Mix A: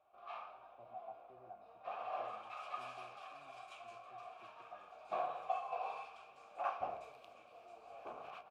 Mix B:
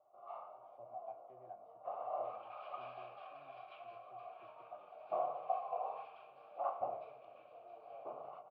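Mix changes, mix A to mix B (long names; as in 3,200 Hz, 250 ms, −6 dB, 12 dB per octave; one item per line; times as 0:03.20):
first sound: add Savitzky-Golay smoothing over 65 samples
second sound: add high-frequency loss of the air 390 metres
master: add loudspeaker in its box 110–5,100 Hz, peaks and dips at 130 Hz +4 dB, 220 Hz −6 dB, 590 Hz +6 dB, 3,000 Hz +4 dB, 4,500 Hz +4 dB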